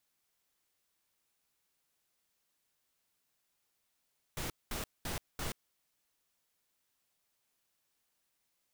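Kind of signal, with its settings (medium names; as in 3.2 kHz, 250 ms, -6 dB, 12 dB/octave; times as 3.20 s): noise bursts pink, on 0.13 s, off 0.21 s, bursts 4, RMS -38 dBFS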